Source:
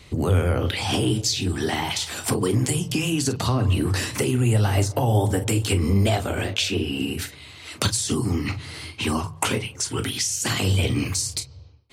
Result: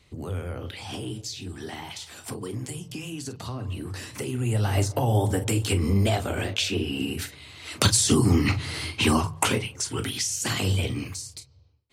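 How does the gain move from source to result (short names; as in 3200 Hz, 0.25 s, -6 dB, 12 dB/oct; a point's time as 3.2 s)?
3.98 s -12 dB
4.78 s -2.5 dB
7.49 s -2.5 dB
7.99 s +4 dB
9 s +4 dB
9.85 s -3 dB
10.71 s -3 dB
11.33 s -13 dB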